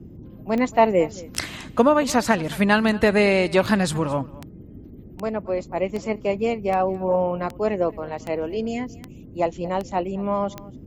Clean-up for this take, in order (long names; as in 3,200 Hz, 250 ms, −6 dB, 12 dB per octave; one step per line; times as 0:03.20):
click removal
noise reduction from a noise print 25 dB
echo removal 223 ms −20.5 dB